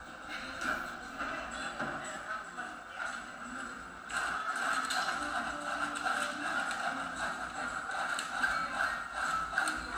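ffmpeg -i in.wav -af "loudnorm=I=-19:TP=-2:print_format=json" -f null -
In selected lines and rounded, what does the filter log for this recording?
"input_i" : "-35.2",
"input_tp" : "-15.8",
"input_lra" : "5.0",
"input_thresh" : "-45.2",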